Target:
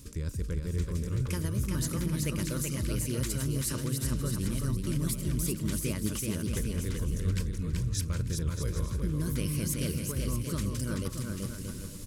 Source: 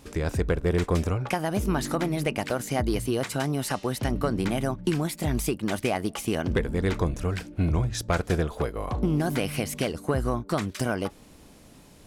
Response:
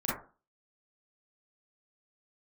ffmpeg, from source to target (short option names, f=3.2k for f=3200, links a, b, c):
-af "bass=f=250:g=13,treble=f=4k:g=14,areverse,acompressor=threshold=-26dB:ratio=12,areverse,asuperstop=centerf=750:order=4:qfactor=2.1,aecho=1:1:380|627|787.6|891.9|959.7:0.631|0.398|0.251|0.158|0.1,volume=-3dB"